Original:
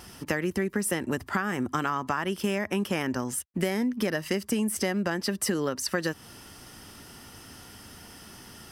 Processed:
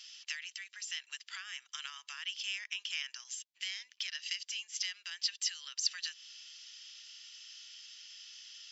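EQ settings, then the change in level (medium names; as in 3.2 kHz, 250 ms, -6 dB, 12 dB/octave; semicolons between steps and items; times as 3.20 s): ladder high-pass 2.6 kHz, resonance 40%; brick-wall FIR low-pass 7.6 kHz; +6.5 dB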